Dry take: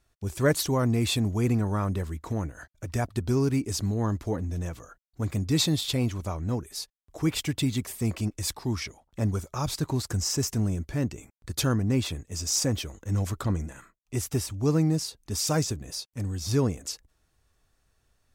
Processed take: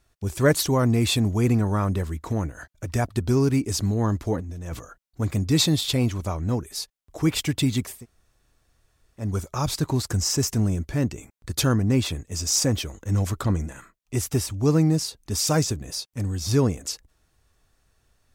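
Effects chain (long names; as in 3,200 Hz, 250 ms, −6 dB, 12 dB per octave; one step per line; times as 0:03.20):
0:04.40–0:04.80: compressor whose output falls as the input rises −37 dBFS, ratio −1
0:07.94–0:09.26: fill with room tone, crossfade 0.24 s
level +4 dB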